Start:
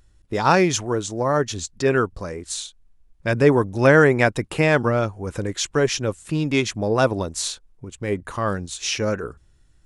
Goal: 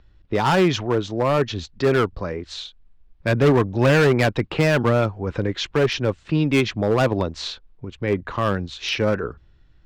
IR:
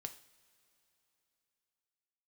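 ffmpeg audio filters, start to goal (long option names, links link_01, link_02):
-filter_complex "[0:a]lowpass=frequency=4200:width=0.5412,lowpass=frequency=4200:width=1.3066,acrossover=split=220[link_01][link_02];[link_02]volume=18dB,asoftclip=hard,volume=-18dB[link_03];[link_01][link_03]amix=inputs=2:normalize=0,volume=3dB"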